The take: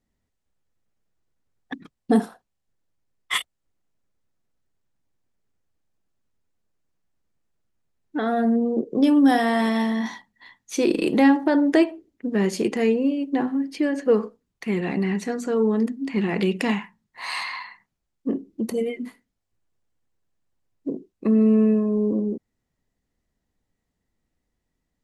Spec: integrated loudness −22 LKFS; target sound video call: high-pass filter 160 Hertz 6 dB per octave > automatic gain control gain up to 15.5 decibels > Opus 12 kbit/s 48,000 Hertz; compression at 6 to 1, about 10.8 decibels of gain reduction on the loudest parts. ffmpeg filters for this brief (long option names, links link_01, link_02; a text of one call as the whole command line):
ffmpeg -i in.wav -af "acompressor=threshold=-24dB:ratio=6,highpass=frequency=160:poles=1,dynaudnorm=maxgain=15.5dB,volume=-1dB" -ar 48000 -c:a libopus -b:a 12k out.opus